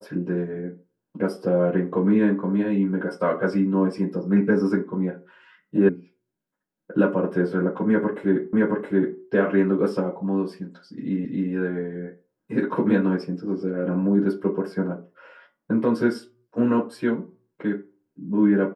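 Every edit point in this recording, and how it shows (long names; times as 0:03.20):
0:05.89: cut off before it has died away
0:08.53: the same again, the last 0.67 s
0:11.25: the same again, the last 0.27 s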